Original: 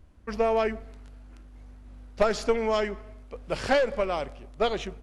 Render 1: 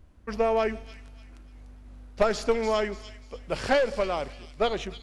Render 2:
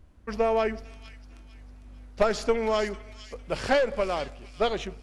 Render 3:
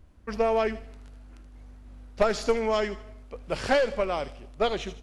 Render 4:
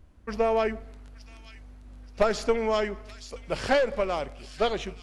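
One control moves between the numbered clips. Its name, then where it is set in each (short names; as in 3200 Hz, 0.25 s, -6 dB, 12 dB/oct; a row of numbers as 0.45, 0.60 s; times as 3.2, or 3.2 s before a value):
thin delay, time: 294, 452, 77, 876 ms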